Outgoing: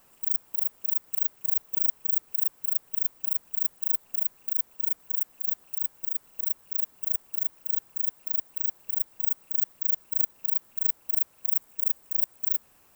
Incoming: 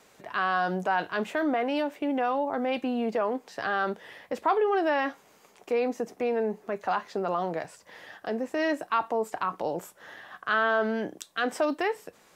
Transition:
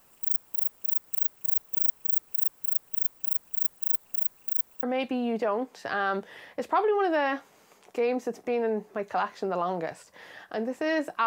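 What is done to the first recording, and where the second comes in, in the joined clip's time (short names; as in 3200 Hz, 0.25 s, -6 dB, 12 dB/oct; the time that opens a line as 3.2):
outgoing
4.83 switch to incoming from 2.56 s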